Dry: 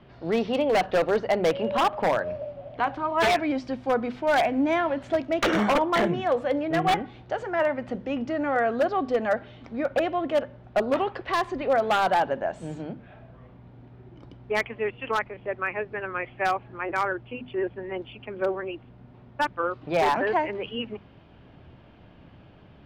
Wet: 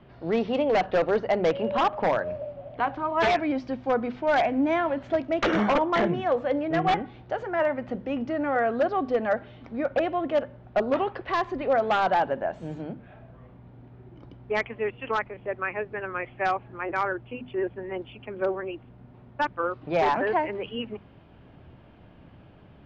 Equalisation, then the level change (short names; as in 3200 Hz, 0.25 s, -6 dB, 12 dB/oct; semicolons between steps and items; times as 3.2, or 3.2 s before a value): Chebyshev low-pass 7000 Hz, order 3; air absorption 110 m; 0.0 dB